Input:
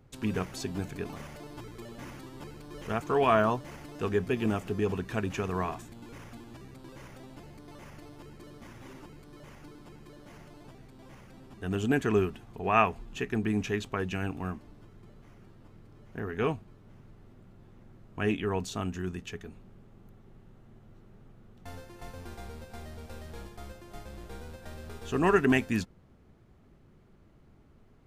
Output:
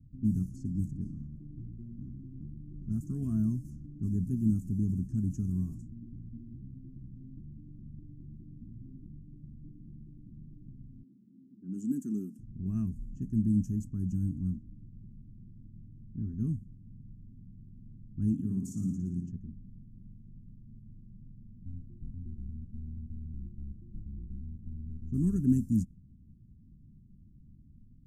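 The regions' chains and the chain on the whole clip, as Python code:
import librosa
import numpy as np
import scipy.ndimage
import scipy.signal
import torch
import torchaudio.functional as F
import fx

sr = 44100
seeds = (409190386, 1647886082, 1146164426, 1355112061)

y = fx.chain(x, sr, fx.highpass(hz=230.0, slope=24),
    fx.peak_eq(hz=790.0, db=-10.0, octaves=0.52), at=(11.03, 12.39))
y = fx.chain(y, sr, fx.highpass(hz=110.0, slope=24),
    fx.room_flutter(wall_m=9.8, rt60_s=0.75), at=(18.33, 19.32))
y = fx.env_lowpass(y, sr, base_hz=470.0, full_db=-28.5)
y = scipy.signal.sosfilt(scipy.signal.cheby2(4, 40, [450.0, 4000.0], 'bandstop', fs=sr, output='sos'), y)
y = fx.high_shelf(y, sr, hz=2800.0, db=-8.5)
y = F.gain(torch.from_numpy(y), 4.5).numpy()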